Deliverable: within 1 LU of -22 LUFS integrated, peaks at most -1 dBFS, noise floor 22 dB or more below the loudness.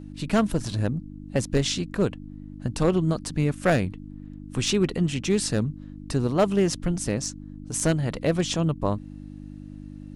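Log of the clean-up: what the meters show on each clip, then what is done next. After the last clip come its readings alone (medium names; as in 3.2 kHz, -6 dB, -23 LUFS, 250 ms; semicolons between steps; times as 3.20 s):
clipped samples 0.4%; clipping level -13.0 dBFS; hum 50 Hz; highest harmonic 300 Hz; hum level -37 dBFS; loudness -25.5 LUFS; peak level -13.0 dBFS; loudness target -22.0 LUFS
-> clip repair -13 dBFS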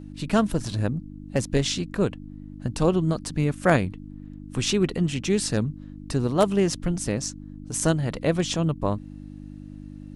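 clipped samples 0.0%; hum 50 Hz; highest harmonic 300 Hz; hum level -37 dBFS
-> de-hum 50 Hz, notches 6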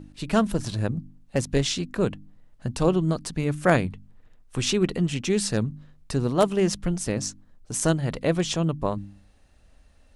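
hum not found; loudness -26.0 LUFS; peak level -4.0 dBFS; loudness target -22.0 LUFS
-> trim +4 dB; peak limiter -1 dBFS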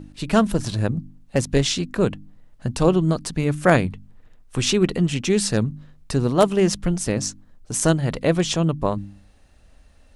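loudness -22.0 LUFS; peak level -1.0 dBFS; noise floor -52 dBFS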